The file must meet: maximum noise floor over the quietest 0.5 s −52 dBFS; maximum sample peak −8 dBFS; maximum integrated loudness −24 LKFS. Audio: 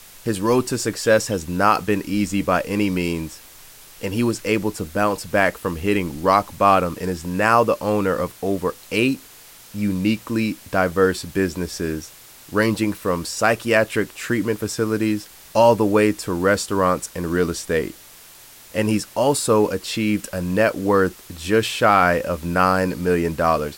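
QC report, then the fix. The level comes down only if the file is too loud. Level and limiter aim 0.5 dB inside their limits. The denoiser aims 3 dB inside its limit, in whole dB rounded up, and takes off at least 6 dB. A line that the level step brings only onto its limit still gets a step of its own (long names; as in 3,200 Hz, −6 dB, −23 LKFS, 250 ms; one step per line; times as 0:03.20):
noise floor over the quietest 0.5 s −45 dBFS: out of spec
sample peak −2.5 dBFS: out of spec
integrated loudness −20.5 LKFS: out of spec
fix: broadband denoise 6 dB, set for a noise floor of −45 dBFS
level −4 dB
brickwall limiter −8.5 dBFS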